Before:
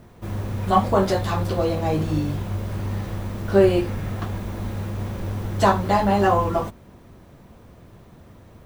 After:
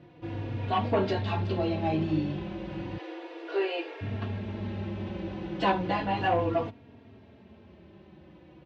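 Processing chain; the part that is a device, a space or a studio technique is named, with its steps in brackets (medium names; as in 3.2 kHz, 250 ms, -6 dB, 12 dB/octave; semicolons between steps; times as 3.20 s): 2.97–4.01 s: steep high-pass 320 Hz 96 dB/octave; barber-pole flanger into a guitar amplifier (endless flanger 3.6 ms -0.34 Hz; saturation -14.5 dBFS, distortion -17 dB; cabinet simulation 90–4200 Hz, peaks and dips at 320 Hz +7 dB, 1.2 kHz -7 dB, 2.7 kHz +6 dB); trim -2 dB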